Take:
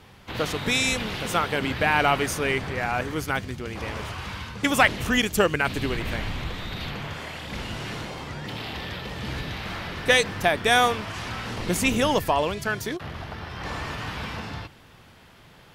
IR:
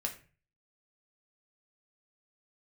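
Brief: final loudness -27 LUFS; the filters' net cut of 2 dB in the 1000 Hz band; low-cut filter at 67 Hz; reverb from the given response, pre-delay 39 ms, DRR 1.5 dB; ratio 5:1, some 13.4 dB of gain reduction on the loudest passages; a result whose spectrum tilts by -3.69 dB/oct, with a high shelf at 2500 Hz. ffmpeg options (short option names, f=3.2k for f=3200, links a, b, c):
-filter_complex "[0:a]highpass=67,equalizer=f=1k:t=o:g=-3.5,highshelf=f=2.5k:g=3.5,acompressor=threshold=-29dB:ratio=5,asplit=2[a][b];[1:a]atrim=start_sample=2205,adelay=39[c];[b][c]afir=irnorm=-1:irlink=0,volume=-3dB[d];[a][d]amix=inputs=2:normalize=0,volume=3.5dB"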